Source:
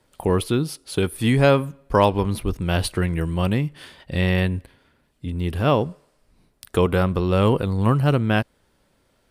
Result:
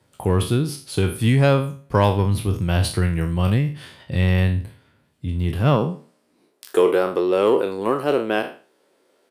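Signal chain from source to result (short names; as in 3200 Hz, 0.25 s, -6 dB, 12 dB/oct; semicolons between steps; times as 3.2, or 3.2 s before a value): spectral trails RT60 0.38 s; high-pass sweep 100 Hz -> 380 Hz, 5.48–6.55; in parallel at -9 dB: soft clip -18 dBFS, distortion -8 dB; on the sum: downsampling 32000 Hz; gain -3.5 dB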